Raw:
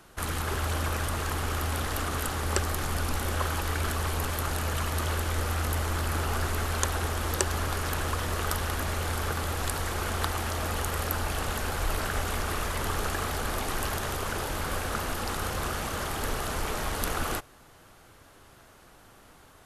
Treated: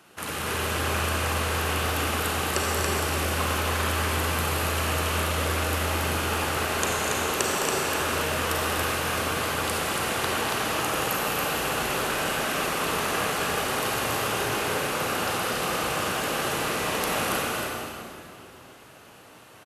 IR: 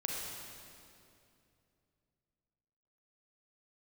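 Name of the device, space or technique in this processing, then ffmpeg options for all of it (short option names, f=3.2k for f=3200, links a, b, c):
stadium PA: -filter_complex "[0:a]highpass=150,equalizer=f=2.7k:t=o:w=0.44:g=5.5,aecho=1:1:209.9|244.9|279.9:0.282|0.355|0.631[a];[1:a]atrim=start_sample=2205[b];[a][b]afir=irnorm=-1:irlink=0"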